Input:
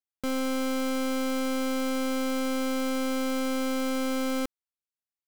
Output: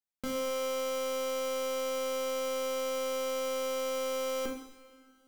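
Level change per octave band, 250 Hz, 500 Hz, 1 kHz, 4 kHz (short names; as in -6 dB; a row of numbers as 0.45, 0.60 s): -16.0, +1.0, -4.0, -2.5 dB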